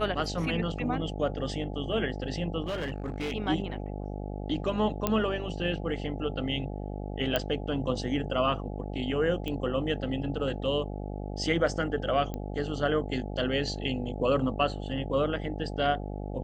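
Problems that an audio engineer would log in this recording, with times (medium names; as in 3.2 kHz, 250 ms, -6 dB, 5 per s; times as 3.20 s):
buzz 50 Hz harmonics 17 -36 dBFS
2.64–3.33 s: clipped -28.5 dBFS
5.07 s: pop -11 dBFS
7.36 s: pop -12 dBFS
9.48 s: pop -21 dBFS
12.34 s: pop -22 dBFS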